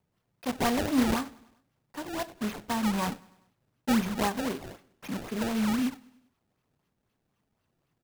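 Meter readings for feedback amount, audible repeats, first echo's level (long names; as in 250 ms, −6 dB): 56%, 3, −24.0 dB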